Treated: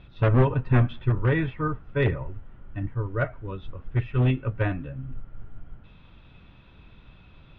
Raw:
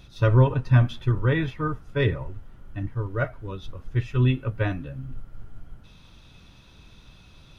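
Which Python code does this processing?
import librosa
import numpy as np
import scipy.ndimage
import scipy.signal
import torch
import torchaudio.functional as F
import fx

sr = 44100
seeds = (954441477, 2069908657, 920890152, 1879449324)

y = np.minimum(x, 2.0 * 10.0 ** (-16.0 / 20.0) - x)
y = scipy.signal.sosfilt(scipy.signal.butter(4, 3000.0, 'lowpass', fs=sr, output='sos'), y)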